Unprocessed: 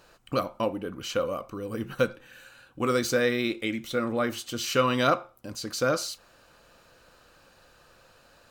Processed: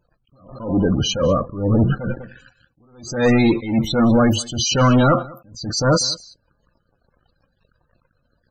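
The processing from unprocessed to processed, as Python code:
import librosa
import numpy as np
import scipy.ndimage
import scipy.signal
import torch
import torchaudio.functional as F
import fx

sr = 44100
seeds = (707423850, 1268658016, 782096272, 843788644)

p1 = fx.bass_treble(x, sr, bass_db=13, treble_db=5)
p2 = fx.leveller(p1, sr, passes=5)
p3 = fx.spec_topn(p2, sr, count=32)
p4 = p3 + fx.echo_single(p3, sr, ms=195, db=-22.5, dry=0)
p5 = fx.attack_slew(p4, sr, db_per_s=110.0)
y = F.gain(torch.from_numpy(p5), -3.0).numpy()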